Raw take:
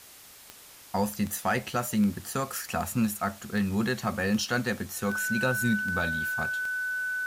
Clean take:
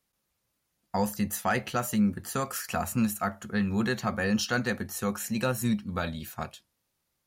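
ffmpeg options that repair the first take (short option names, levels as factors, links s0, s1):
-af "adeclick=t=4,bandreject=f=1500:w=30,afwtdn=0.0035"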